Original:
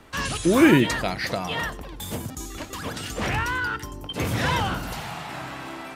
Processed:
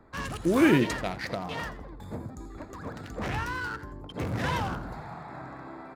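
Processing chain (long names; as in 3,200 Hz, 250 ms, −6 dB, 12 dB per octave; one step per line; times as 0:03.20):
adaptive Wiener filter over 15 samples
echo with shifted repeats 83 ms, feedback 34%, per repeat +85 Hz, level −15 dB
level −5 dB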